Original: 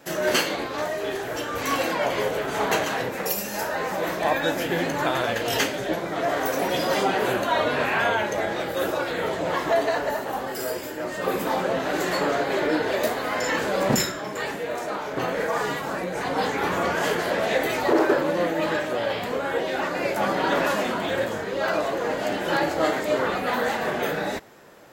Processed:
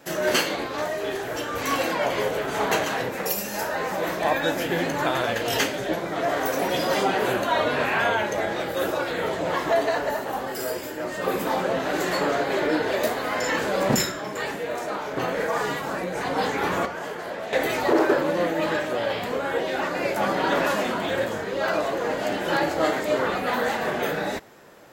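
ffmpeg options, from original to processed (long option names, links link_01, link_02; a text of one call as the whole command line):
ffmpeg -i in.wav -filter_complex "[0:a]asettb=1/sr,asplit=3[link_01][link_02][link_03];[link_01]atrim=end=16.854[link_04];[link_02]atrim=start=16.85:end=17.53,asetpts=PTS-STARTPTS,afade=type=in:duration=0.004:curve=qsin,afade=type=out:start_time=0.676:duration=0.004:curve=qsin,acrossover=split=510|1500[link_05][link_06][link_07];[link_05]acompressor=threshold=-40dB:ratio=4[link_08];[link_06]acompressor=threshold=-34dB:ratio=4[link_09];[link_07]acompressor=threshold=-44dB:ratio=4[link_10];[link_08][link_09][link_10]amix=inputs=3:normalize=0[link_11];[link_03]atrim=start=17.526[link_12];[link_04][link_11]acrossfade=duration=0.004:curve1=hsin:curve2=qsin[link_13];[link_13][link_12]acrossfade=duration=0.004:curve1=qsin:curve2=hsin" out.wav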